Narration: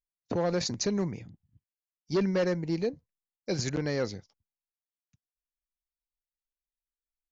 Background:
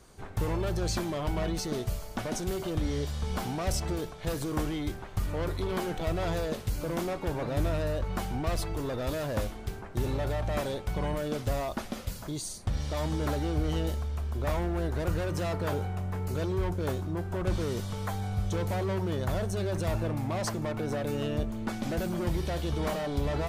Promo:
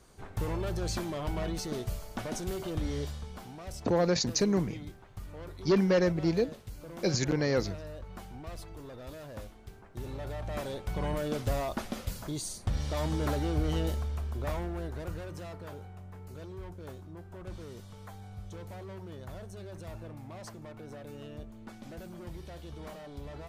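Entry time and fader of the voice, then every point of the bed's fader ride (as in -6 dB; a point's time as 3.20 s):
3.55 s, +2.0 dB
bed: 3.07 s -3 dB
3.33 s -12.5 dB
9.70 s -12.5 dB
11.17 s -0.5 dB
14.04 s -0.5 dB
15.72 s -13.5 dB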